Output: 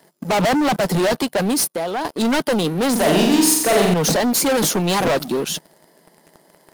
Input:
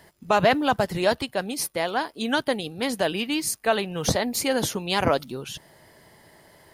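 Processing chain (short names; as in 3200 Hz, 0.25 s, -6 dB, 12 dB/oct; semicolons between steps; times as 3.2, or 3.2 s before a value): elliptic high-pass 160 Hz; bell 2300 Hz -7.5 dB 1.5 oct; sample leveller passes 3; 1.64–2.05 compressor 2.5:1, threshold -32 dBFS, peak gain reduction 11.5 dB; soft clip -22.5 dBFS, distortion -9 dB; 2.91–3.94 flutter echo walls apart 7.6 m, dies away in 0.88 s; gain +7 dB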